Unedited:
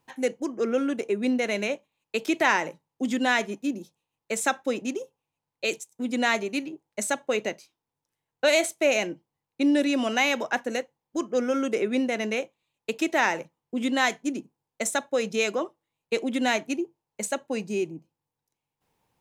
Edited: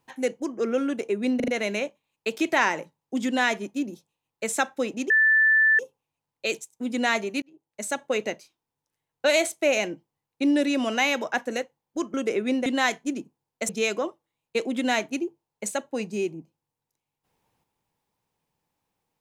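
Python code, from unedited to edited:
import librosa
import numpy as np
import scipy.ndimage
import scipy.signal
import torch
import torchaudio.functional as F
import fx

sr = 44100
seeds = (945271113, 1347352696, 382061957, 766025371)

y = fx.edit(x, sr, fx.stutter(start_s=1.36, slice_s=0.04, count=4),
    fx.insert_tone(at_s=4.98, length_s=0.69, hz=1760.0, db=-15.5),
    fx.fade_in_span(start_s=6.61, length_s=0.63),
    fx.cut(start_s=11.33, length_s=0.27),
    fx.cut(start_s=12.12, length_s=1.73),
    fx.cut(start_s=14.88, length_s=0.38), tone=tone)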